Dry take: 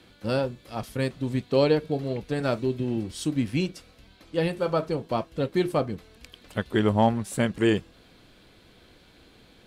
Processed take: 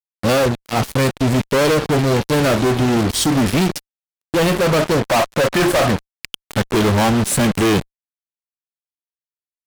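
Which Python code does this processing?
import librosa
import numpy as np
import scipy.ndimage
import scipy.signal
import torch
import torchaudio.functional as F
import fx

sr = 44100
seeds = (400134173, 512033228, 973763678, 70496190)

y = fx.vibrato(x, sr, rate_hz=1.4, depth_cents=34.0)
y = fx.spec_box(y, sr, start_s=5.06, length_s=0.93, low_hz=530.0, high_hz=2000.0, gain_db=12)
y = fx.fuzz(y, sr, gain_db=42.0, gate_db=-40.0)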